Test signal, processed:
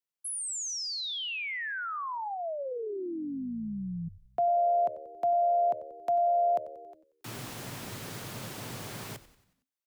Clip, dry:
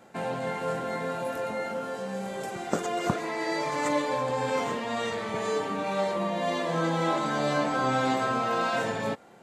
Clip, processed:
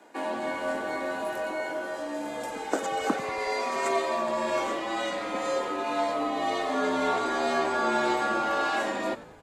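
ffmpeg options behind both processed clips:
-filter_complex "[0:a]afreqshift=98,asplit=6[s0][s1][s2][s3][s4][s5];[s1]adelay=92,afreqshift=-75,volume=0.15[s6];[s2]adelay=184,afreqshift=-150,volume=0.0776[s7];[s3]adelay=276,afreqshift=-225,volume=0.0403[s8];[s4]adelay=368,afreqshift=-300,volume=0.0211[s9];[s5]adelay=460,afreqshift=-375,volume=0.011[s10];[s0][s6][s7][s8][s9][s10]amix=inputs=6:normalize=0,aeval=exprs='0.376*(cos(1*acos(clip(val(0)/0.376,-1,1)))-cos(1*PI/2))+0.00531*(cos(2*acos(clip(val(0)/0.376,-1,1)))-cos(2*PI/2))':c=same"

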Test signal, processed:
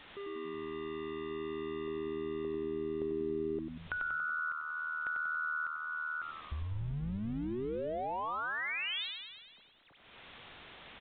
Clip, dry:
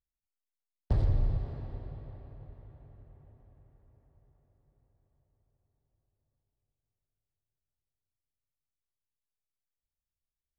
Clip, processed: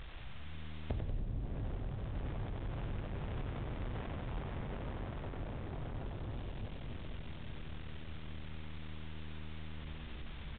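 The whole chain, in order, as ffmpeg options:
-filter_complex "[0:a]aeval=exprs='val(0)+0.5*0.0075*sgn(val(0))':c=same,acompressor=threshold=0.00562:ratio=5,asplit=9[s0][s1][s2][s3][s4][s5][s6][s7][s8];[s1]adelay=94,afreqshift=-78,volume=0.562[s9];[s2]adelay=188,afreqshift=-156,volume=0.331[s10];[s3]adelay=282,afreqshift=-234,volume=0.195[s11];[s4]adelay=376,afreqshift=-312,volume=0.116[s12];[s5]adelay=470,afreqshift=-390,volume=0.0684[s13];[s6]adelay=564,afreqshift=-468,volume=0.0403[s14];[s7]adelay=658,afreqshift=-546,volume=0.0237[s15];[s8]adelay=752,afreqshift=-624,volume=0.014[s16];[s0][s9][s10][s11][s12][s13][s14][s15][s16]amix=inputs=9:normalize=0,volume=2" -ar 8000 -c:a pcm_mulaw

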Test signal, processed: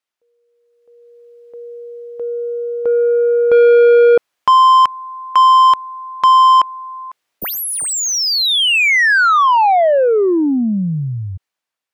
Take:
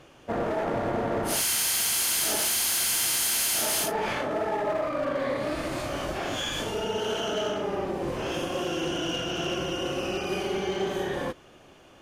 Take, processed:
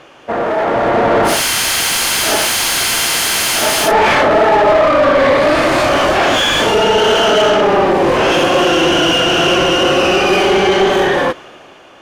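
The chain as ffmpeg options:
-filter_complex "[0:a]dynaudnorm=f=180:g=11:m=3.76,asplit=2[s0][s1];[s1]highpass=f=720:p=1,volume=7.08,asoftclip=type=tanh:threshold=0.376[s2];[s0][s2]amix=inputs=2:normalize=0,lowpass=f=2500:p=1,volume=0.501,volume=1.68"

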